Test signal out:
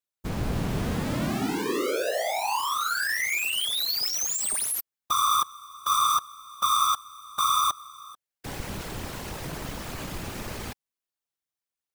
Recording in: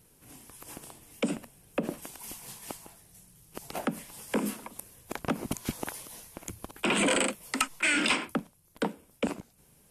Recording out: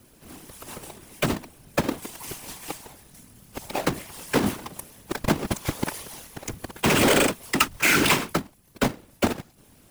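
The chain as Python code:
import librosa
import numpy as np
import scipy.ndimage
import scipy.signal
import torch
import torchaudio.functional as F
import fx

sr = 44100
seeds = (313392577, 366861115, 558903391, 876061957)

y = fx.halfwave_hold(x, sr)
y = fx.whisperise(y, sr, seeds[0])
y = y * 10.0 ** (2.5 / 20.0)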